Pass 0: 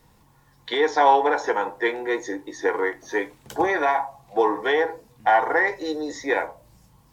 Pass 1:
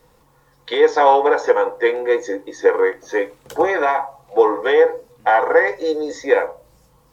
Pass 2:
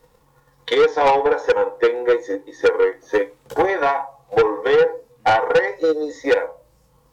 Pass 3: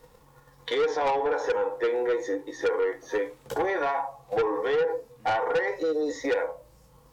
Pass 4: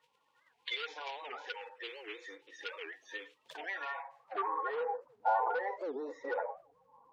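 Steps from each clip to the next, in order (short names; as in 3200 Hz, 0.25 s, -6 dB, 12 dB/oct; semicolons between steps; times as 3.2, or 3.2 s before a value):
thirty-one-band EQ 100 Hz -9 dB, 200 Hz -6 dB, 500 Hz +11 dB, 1250 Hz +5 dB; gain +1.5 dB
harmonic-percussive split percussive -8 dB; transient shaper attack +11 dB, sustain -2 dB; soft clip -10 dBFS, distortion -5 dB
limiter -21.5 dBFS, peak gain reduction 11.5 dB; gain +1 dB
bin magnitudes rounded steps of 30 dB; band-pass sweep 2800 Hz -> 890 Hz, 3.74–4.87; record warp 78 rpm, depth 250 cents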